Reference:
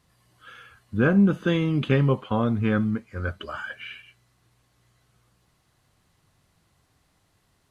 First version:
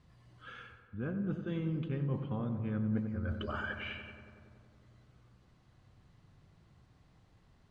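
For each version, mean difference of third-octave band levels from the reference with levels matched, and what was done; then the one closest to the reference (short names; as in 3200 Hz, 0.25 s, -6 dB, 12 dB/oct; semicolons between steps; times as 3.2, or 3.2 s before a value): 7.5 dB: low shelf 310 Hz +8 dB; reverse; compressor 10:1, threshold -31 dBFS, peak gain reduction 21.5 dB; reverse; air absorption 93 m; darkening echo 93 ms, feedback 81%, low-pass 2300 Hz, level -9 dB; gain -3 dB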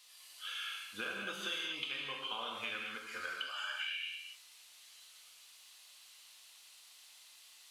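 15.5 dB: HPF 1100 Hz 12 dB/oct; resonant high shelf 2200 Hz +9 dB, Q 1.5; compressor 8:1, threshold -41 dBFS, peak gain reduction 19.5 dB; non-linear reverb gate 0.26 s flat, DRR -1.5 dB; gain +1 dB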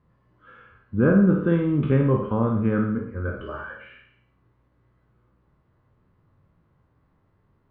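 5.0 dB: spectral trails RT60 0.52 s; LPF 1100 Hz 12 dB/oct; bell 730 Hz -9.5 dB 0.28 oct; flutter echo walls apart 9.1 m, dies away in 0.48 s; gain +1 dB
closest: third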